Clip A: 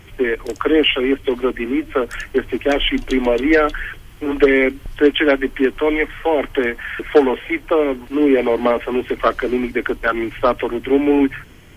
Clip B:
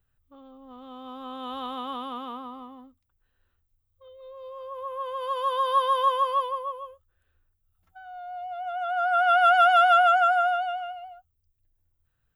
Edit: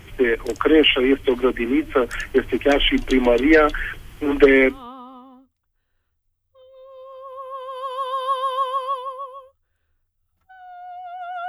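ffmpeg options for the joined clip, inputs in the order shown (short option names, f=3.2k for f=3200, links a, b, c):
-filter_complex "[0:a]apad=whole_dur=11.48,atrim=end=11.48,atrim=end=4.87,asetpts=PTS-STARTPTS[a];[1:a]atrim=start=2.11:end=8.94,asetpts=PTS-STARTPTS[b];[a][b]acrossfade=d=0.22:c1=tri:c2=tri"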